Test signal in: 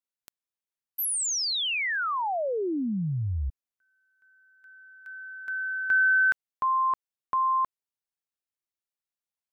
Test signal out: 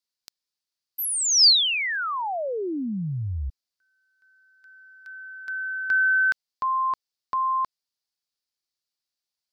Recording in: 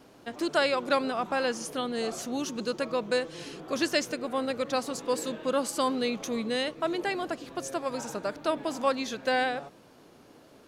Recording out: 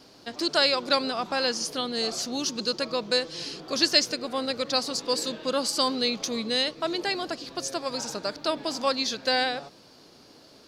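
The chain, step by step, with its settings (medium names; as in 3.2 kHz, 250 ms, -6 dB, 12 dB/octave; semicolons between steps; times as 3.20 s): peaking EQ 4.7 kHz +15 dB 0.79 oct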